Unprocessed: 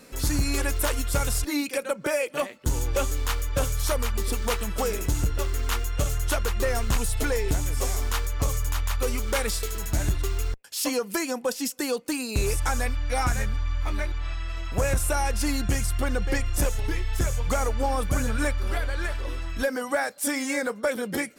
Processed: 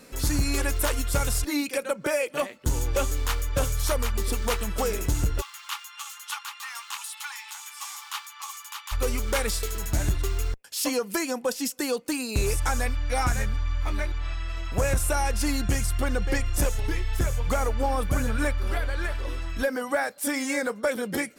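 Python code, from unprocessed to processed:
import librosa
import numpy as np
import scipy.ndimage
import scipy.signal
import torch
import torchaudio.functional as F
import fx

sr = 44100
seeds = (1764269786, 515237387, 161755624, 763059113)

y = fx.cheby_ripple_highpass(x, sr, hz=810.0, ripple_db=6, at=(5.4, 8.91), fade=0.02)
y = fx.dynamic_eq(y, sr, hz=6800.0, q=0.95, threshold_db=-46.0, ratio=4.0, max_db=-4, at=(17.04, 20.34))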